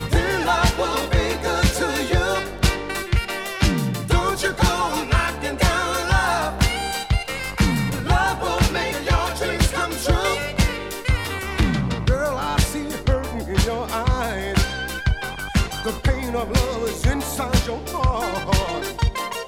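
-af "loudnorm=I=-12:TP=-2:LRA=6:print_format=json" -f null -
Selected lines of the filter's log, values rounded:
"input_i" : "-22.1",
"input_tp" : "-2.4",
"input_lra" : "2.3",
"input_thresh" : "-32.1",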